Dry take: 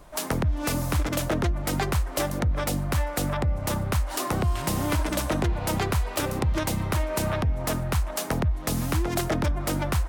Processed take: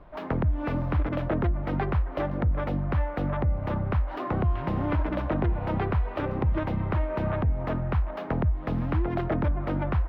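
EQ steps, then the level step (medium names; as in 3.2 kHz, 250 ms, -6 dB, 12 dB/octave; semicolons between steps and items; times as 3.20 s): peaking EQ 8.9 kHz -13 dB 1.6 oct; dynamic bell 5.2 kHz, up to -5 dB, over -51 dBFS, Q 0.84; distance through air 330 m; 0.0 dB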